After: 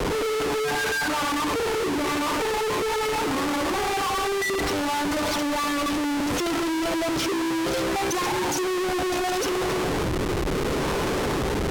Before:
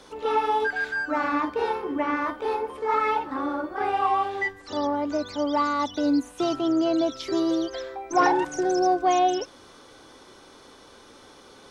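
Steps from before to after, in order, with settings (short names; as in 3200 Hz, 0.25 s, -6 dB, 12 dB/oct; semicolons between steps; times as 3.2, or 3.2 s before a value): compressor 6:1, threshold -26 dBFS, peak gain reduction 10.5 dB; on a send at -7 dB: reverb RT60 1.7 s, pre-delay 62 ms; on the sum: rotary speaker horn 0.7 Hz; ripple EQ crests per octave 0.75, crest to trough 7 dB; in parallel at -10 dB: fuzz box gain 50 dB, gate -53 dBFS; on the sum: reverb removal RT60 1.2 s; Schmitt trigger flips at -31.5 dBFS; decimation joined by straight lines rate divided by 2×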